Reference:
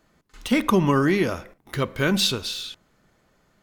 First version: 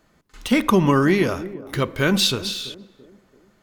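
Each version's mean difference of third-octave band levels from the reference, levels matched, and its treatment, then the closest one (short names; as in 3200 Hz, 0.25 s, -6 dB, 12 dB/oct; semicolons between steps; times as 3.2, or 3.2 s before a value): 1.5 dB: narrowing echo 0.336 s, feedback 47%, band-pass 330 Hz, level -14.5 dB; gain +2.5 dB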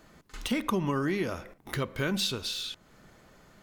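3.0 dB: compressor 2:1, threshold -46 dBFS, peak gain reduction 17 dB; gain +6.5 dB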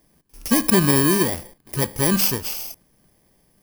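7.0 dB: FFT order left unsorted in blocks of 32 samples; gain +2.5 dB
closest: first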